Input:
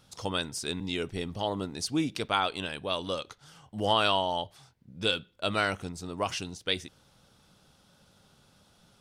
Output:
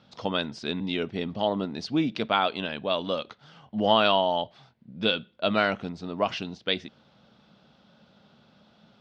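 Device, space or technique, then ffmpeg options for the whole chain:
guitar cabinet: -af "highpass=88,equalizer=f=94:t=q:w=4:g=-7,equalizer=f=220:t=q:w=4:g=8,equalizer=f=640:t=q:w=4:g=5,lowpass=f=4.3k:w=0.5412,lowpass=f=4.3k:w=1.3066,volume=2.5dB"

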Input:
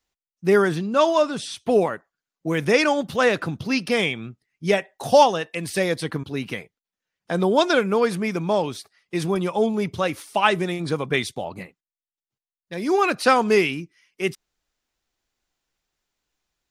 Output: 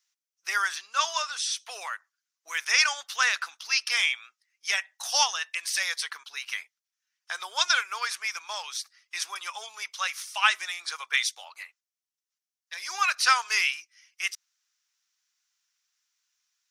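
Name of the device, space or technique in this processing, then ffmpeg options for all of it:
headphones lying on a table: -af "highpass=f=1.2k:w=0.5412,highpass=f=1.2k:w=1.3066,equalizer=f=5.8k:t=o:w=0.53:g=9.5"

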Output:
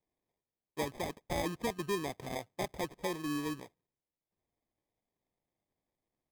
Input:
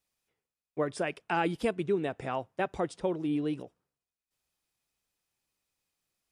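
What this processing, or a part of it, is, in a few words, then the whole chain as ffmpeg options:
crushed at another speed: -af "asetrate=35280,aresample=44100,acrusher=samples=39:mix=1:aa=0.000001,asetrate=55125,aresample=44100,volume=-5.5dB"

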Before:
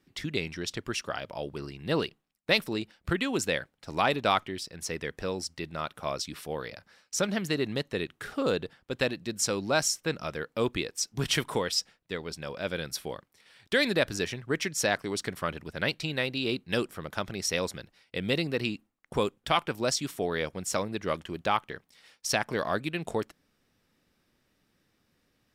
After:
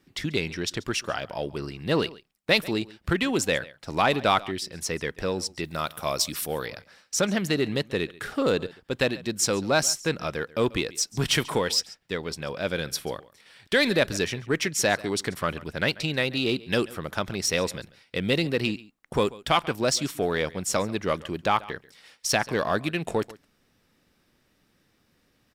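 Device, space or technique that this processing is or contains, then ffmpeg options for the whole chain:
parallel distortion: -filter_complex "[0:a]asettb=1/sr,asplit=3[a][b][c];[a]atrim=end=5.654[d];[b]atrim=start=5.65:end=6.66,asetpts=PTS-STARTPTS,afade=t=in:d=0.004:c=qsin,afade=t=out:st=1.006:d=0.004:c=qsin,aemphasis=mode=production:type=50fm[e];[c]atrim=start=6.656[f];[d][e]acrossfade=d=0.004:c1=hsin:c2=qsin[g];[g][f]acrossfade=d=0.004:c1=qsin:c2=hsin,aecho=1:1:138:0.0841,asplit=2[h][i];[i]asoftclip=type=hard:threshold=-27dB,volume=-8dB[j];[h][j]amix=inputs=2:normalize=0,volume=2dB"

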